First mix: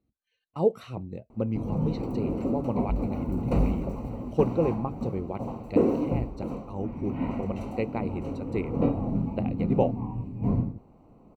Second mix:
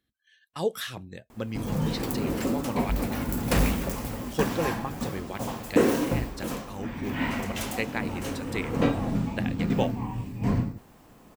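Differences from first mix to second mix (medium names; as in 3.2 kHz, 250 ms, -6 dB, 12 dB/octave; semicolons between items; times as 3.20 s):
speech -5.5 dB; master: remove boxcar filter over 26 samples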